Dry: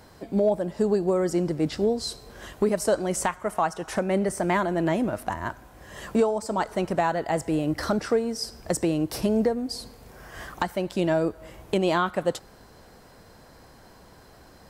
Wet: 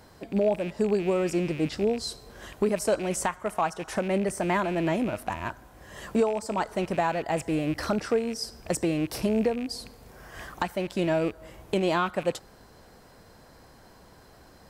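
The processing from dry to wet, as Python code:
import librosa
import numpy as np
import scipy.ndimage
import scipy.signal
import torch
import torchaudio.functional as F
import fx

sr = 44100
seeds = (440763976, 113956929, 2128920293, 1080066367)

y = fx.rattle_buzz(x, sr, strikes_db=-38.0, level_db=-29.0)
y = F.gain(torch.from_numpy(y), -2.0).numpy()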